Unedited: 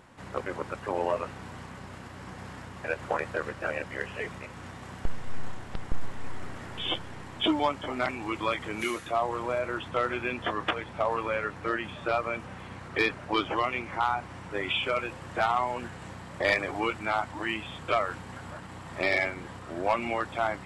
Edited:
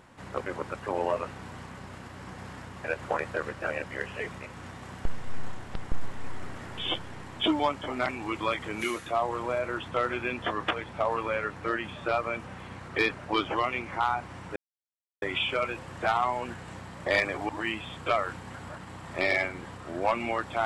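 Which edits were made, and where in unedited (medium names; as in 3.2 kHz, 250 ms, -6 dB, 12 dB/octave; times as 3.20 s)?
14.56 s: insert silence 0.66 s
16.83–17.31 s: delete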